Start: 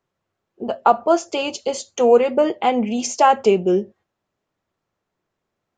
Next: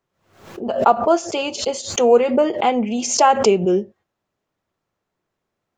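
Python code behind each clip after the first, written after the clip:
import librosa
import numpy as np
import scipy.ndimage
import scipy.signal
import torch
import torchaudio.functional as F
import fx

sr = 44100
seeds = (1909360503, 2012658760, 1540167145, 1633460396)

y = fx.pre_swell(x, sr, db_per_s=100.0)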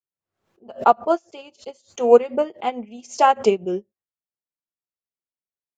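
y = fx.upward_expand(x, sr, threshold_db=-30.0, expansion=2.5)
y = F.gain(torch.from_numpy(y), 2.5).numpy()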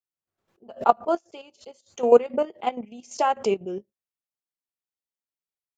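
y = fx.level_steps(x, sr, step_db=10)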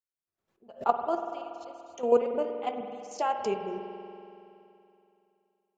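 y = fx.rev_spring(x, sr, rt60_s=2.8, pass_ms=(47,), chirp_ms=60, drr_db=5.5)
y = F.gain(torch.from_numpy(y), -7.0).numpy()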